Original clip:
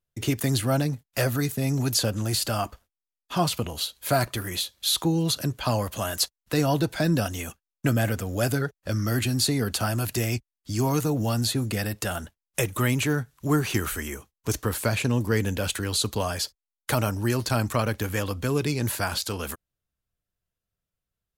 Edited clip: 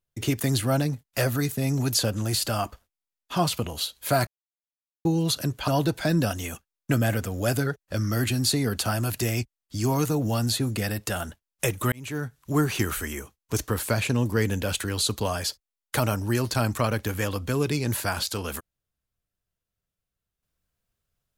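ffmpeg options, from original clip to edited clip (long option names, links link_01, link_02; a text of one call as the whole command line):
ffmpeg -i in.wav -filter_complex "[0:a]asplit=5[link_01][link_02][link_03][link_04][link_05];[link_01]atrim=end=4.27,asetpts=PTS-STARTPTS,afade=type=out:start_time=4.266:duration=0.004:curve=hsin[link_06];[link_02]atrim=start=4.27:end=5.05,asetpts=PTS-STARTPTS,volume=0[link_07];[link_03]atrim=start=5.05:end=5.682,asetpts=PTS-STARTPTS,afade=type=in:duration=0.004:curve=hsin[link_08];[link_04]atrim=start=6.628:end=12.87,asetpts=PTS-STARTPTS,afade=type=out:start_time=6.238:duration=0.004:curve=hsin[link_09];[link_05]atrim=start=12.87,asetpts=PTS-STARTPTS,afade=type=in:duration=0.75:curve=qsin[link_10];[link_06][link_07][link_08]concat=n=3:v=0:a=1[link_11];[link_09][link_10]concat=n=2:v=0:a=1[link_12];[link_11][link_12]acrossfade=duration=0.004:curve1=hsin:curve2=hsin" out.wav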